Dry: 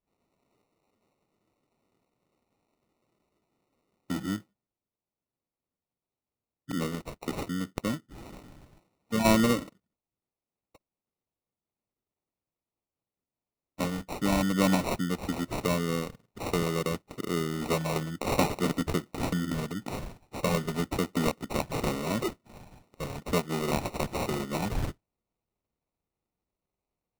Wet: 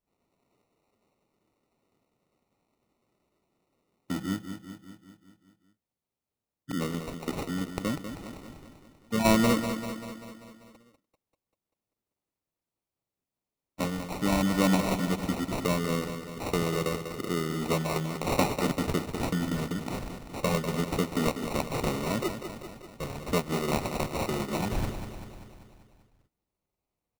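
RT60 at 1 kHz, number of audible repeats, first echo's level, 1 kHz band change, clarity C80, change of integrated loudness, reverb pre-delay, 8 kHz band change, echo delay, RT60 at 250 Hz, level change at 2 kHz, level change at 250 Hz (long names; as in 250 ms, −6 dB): no reverb audible, 6, −9.0 dB, +1.0 dB, no reverb audible, +0.5 dB, no reverb audible, +0.5 dB, 195 ms, no reverb audible, +1.0 dB, +1.0 dB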